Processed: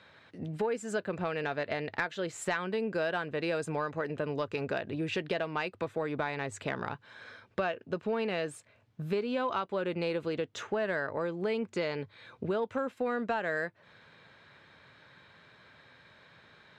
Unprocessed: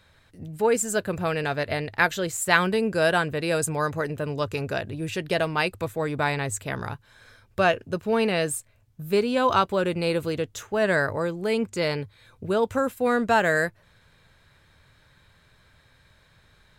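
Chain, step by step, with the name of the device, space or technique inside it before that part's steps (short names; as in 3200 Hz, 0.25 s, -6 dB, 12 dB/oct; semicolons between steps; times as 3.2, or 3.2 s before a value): AM radio (BPF 190–3700 Hz; compressor 5:1, threshold -34 dBFS, peak gain reduction 18 dB; soft clip -21 dBFS, distortion -28 dB); gain +4 dB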